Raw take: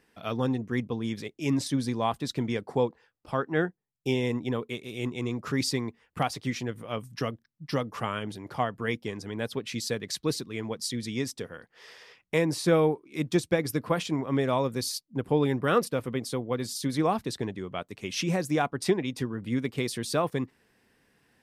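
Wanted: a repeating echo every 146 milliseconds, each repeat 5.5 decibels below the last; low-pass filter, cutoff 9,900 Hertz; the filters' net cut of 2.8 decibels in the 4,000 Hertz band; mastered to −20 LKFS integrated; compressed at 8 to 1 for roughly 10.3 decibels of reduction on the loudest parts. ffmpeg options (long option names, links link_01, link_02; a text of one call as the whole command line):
ffmpeg -i in.wav -af "lowpass=9900,equalizer=frequency=4000:width_type=o:gain=-3.5,acompressor=threshold=-29dB:ratio=8,aecho=1:1:146|292|438|584|730|876|1022:0.531|0.281|0.149|0.079|0.0419|0.0222|0.0118,volume=14.5dB" out.wav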